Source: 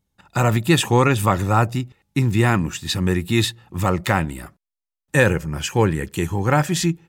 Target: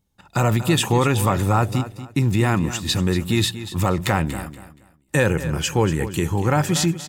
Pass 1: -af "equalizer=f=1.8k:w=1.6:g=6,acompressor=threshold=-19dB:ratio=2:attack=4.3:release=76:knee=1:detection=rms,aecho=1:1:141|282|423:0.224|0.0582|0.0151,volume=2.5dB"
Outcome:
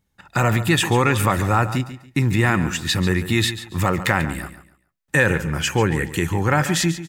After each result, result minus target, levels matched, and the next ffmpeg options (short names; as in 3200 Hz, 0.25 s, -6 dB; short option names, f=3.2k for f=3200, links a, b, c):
echo 96 ms early; 2000 Hz band +5.0 dB
-af "equalizer=f=1.8k:w=1.6:g=6,acompressor=threshold=-19dB:ratio=2:attack=4.3:release=76:knee=1:detection=rms,aecho=1:1:237|474|711:0.224|0.0582|0.0151,volume=2.5dB"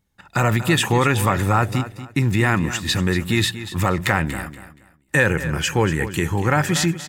2000 Hz band +5.0 dB
-af "equalizer=f=1.8k:w=1.6:g=-2.5,acompressor=threshold=-19dB:ratio=2:attack=4.3:release=76:knee=1:detection=rms,aecho=1:1:237|474|711:0.224|0.0582|0.0151,volume=2.5dB"